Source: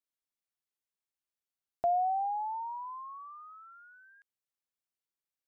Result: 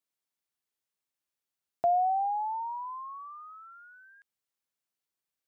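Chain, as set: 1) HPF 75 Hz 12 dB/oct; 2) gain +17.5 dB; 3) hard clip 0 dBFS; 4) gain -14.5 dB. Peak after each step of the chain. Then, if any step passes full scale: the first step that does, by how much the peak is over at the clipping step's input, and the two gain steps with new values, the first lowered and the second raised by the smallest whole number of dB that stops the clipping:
-22.0, -4.5, -4.5, -19.0 dBFS; no overload

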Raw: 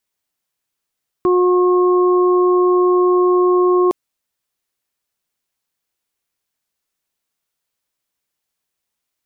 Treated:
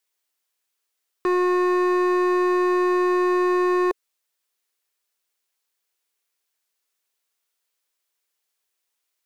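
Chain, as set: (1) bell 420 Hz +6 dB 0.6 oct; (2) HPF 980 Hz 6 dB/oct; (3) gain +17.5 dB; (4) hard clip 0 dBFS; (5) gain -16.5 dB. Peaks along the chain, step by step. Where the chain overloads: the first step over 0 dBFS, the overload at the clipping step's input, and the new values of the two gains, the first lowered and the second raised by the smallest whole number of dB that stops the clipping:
-5.5, -11.5, +6.0, 0.0, -16.5 dBFS; step 3, 6.0 dB; step 3 +11.5 dB, step 5 -10.5 dB

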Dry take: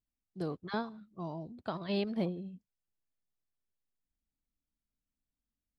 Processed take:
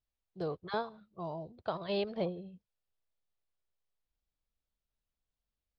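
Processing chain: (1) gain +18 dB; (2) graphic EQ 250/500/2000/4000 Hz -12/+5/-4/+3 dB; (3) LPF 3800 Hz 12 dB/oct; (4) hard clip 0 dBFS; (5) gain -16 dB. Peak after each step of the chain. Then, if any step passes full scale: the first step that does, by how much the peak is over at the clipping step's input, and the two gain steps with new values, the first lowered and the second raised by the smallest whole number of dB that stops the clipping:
-5.5, -5.0, -5.5, -5.5, -21.5 dBFS; no overload

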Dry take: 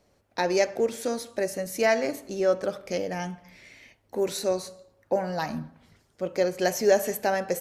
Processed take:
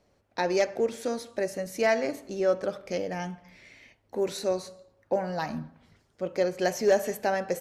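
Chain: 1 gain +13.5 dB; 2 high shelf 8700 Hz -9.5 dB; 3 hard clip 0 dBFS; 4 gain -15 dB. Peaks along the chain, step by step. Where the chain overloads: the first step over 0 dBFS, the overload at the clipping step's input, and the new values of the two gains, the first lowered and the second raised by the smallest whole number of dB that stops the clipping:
+4.5, +4.5, 0.0, -15.0 dBFS; step 1, 4.5 dB; step 1 +8.5 dB, step 4 -10 dB

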